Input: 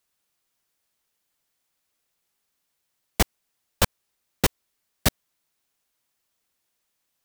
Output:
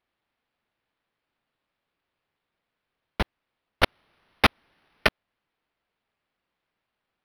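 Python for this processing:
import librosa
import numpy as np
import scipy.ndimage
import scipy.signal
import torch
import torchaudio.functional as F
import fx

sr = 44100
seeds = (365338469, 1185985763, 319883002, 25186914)

y = fx.riaa(x, sr, side='recording', at=(3.83, 5.07))
y = np.interp(np.arange(len(y)), np.arange(len(y))[::6], y[::6])
y = F.gain(torch.from_numpy(y), -4.5).numpy()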